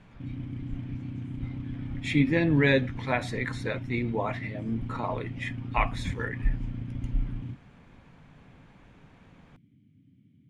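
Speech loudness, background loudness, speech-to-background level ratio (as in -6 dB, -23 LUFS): -29.5 LUFS, -38.0 LUFS, 8.5 dB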